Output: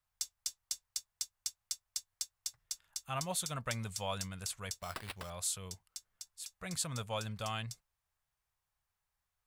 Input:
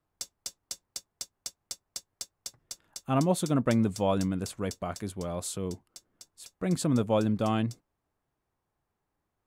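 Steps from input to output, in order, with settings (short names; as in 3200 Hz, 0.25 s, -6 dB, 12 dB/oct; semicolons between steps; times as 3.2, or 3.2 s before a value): passive tone stack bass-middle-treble 10-0-10; in parallel at -2.5 dB: limiter -30 dBFS, peak gain reduction 8.5 dB; 4.81–5.3 on the sum: sample-rate reducer 6500 Hz, jitter 0%; gain -2 dB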